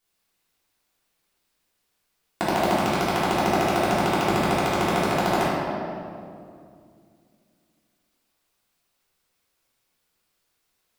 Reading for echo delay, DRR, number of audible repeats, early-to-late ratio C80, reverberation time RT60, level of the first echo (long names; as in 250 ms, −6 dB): no echo audible, −9.5 dB, no echo audible, −0.5 dB, 2.4 s, no echo audible